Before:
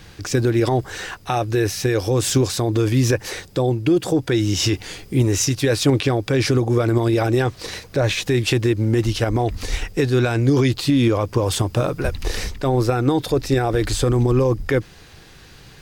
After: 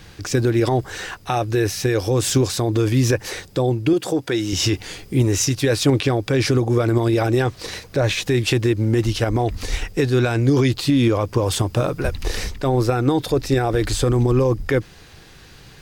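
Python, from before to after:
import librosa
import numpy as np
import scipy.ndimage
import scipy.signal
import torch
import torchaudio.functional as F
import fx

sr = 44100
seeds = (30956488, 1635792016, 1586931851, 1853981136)

y = fx.highpass(x, sr, hz=270.0, slope=6, at=(3.93, 4.53))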